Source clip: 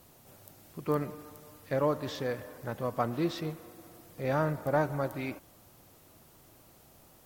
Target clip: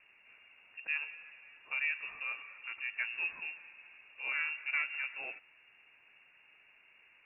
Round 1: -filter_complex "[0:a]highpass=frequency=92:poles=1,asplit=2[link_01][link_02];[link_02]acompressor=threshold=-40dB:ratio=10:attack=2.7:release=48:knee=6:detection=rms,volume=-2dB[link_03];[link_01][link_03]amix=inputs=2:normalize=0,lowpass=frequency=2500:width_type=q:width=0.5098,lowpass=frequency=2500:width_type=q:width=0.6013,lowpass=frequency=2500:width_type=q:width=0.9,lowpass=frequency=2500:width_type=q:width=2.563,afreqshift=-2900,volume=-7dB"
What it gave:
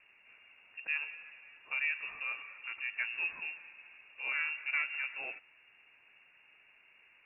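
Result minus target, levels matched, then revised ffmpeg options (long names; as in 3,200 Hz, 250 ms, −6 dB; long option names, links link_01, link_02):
downward compressor: peak gain reduction −6.5 dB
-filter_complex "[0:a]highpass=frequency=92:poles=1,asplit=2[link_01][link_02];[link_02]acompressor=threshold=-47.5dB:ratio=10:attack=2.7:release=48:knee=6:detection=rms,volume=-2dB[link_03];[link_01][link_03]amix=inputs=2:normalize=0,lowpass=frequency=2500:width_type=q:width=0.5098,lowpass=frequency=2500:width_type=q:width=0.6013,lowpass=frequency=2500:width_type=q:width=0.9,lowpass=frequency=2500:width_type=q:width=2.563,afreqshift=-2900,volume=-7dB"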